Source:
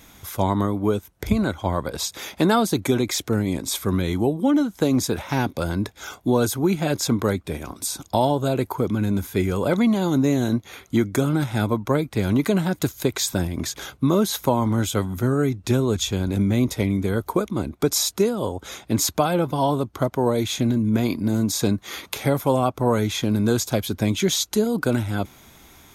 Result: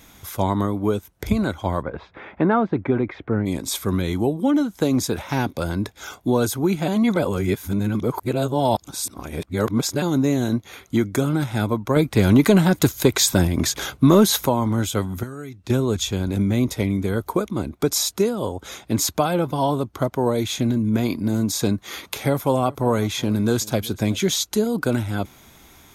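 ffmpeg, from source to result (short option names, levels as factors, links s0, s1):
-filter_complex "[0:a]asplit=3[s0][s1][s2];[s0]afade=t=out:st=1.81:d=0.02[s3];[s1]lowpass=f=2100:w=0.5412,lowpass=f=2100:w=1.3066,afade=t=in:st=1.81:d=0.02,afade=t=out:st=3.45:d=0.02[s4];[s2]afade=t=in:st=3.45:d=0.02[s5];[s3][s4][s5]amix=inputs=3:normalize=0,asettb=1/sr,asplit=3[s6][s7][s8];[s6]atrim=end=11.964[s9];[s7]atrim=start=11.96:end=14.47,asetpts=PTS-STARTPTS,afade=t=in:d=0.004:c=qsin,afade=t=out:st=2.506:d=0.004:c=qsin,acontrast=63[s10];[s8]atrim=start=14.466[s11];[s9][s10]acrossfade=d=0.004:c1=hsin:c2=qsin[s12];[s12][s11]acrossfade=d=0.004:c1=qsin:c2=hsin,asettb=1/sr,asplit=3[s13][s14][s15];[s13]atrim=end=15.234[s16];[s14]atrim=start=15.23:end=15.7,asetpts=PTS-STARTPTS,afade=t=in:d=0.004:c=qsin,afade=t=out:st=0.466:d=0.004:c=qsin,acrossover=split=1400|4500[s17][s18][s19];[s17]acompressor=threshold=0.02:ratio=4[s20];[s18]acompressor=threshold=0.00501:ratio=4[s21];[s19]acompressor=threshold=0.002:ratio=4[s22];[s20][s21][s22]amix=inputs=3:normalize=0[s23];[s15]atrim=start=15.696[s24];[s16][s23]acrossfade=d=0.004:c1=hsin:c2=qsin[s25];[s25][s24]acrossfade=d=0.004:c1=qsin:c2=hsin,asettb=1/sr,asplit=3[s26][s27][s28];[s26]atrim=end=22.284[s29];[s27]atrim=start=22.28:end=24.38,asetpts=PTS-STARTPTS,afade=t=in:d=0.004:c=qsin,afade=t=out:st=2.096:d=0.004:c=qsin,aecho=1:1:380:0.0841,atrim=end_sample=92610[s30];[s28]atrim=start=24.376[s31];[s29][s30]acrossfade=d=0.004:c1=hsin:c2=qsin[s32];[s32][s31]acrossfade=d=0.004:c1=qsin:c2=hsin,asplit=3[s33][s34][s35];[s33]atrim=end=6.882[s36];[s34]atrim=start=6.878:end=10.022,asetpts=PTS-STARTPTS,areverse[s37];[s35]atrim=start=10.018[s38];[s36][s37]acrossfade=d=0.004:c1=hsin:c2=hsin[s39];[s39][s38]acrossfade=d=0.004:c1=hsin:c2=hsin"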